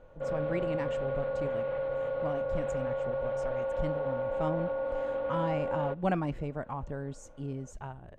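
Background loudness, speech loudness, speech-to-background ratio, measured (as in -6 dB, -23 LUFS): -33.5 LUFS, -37.5 LUFS, -4.0 dB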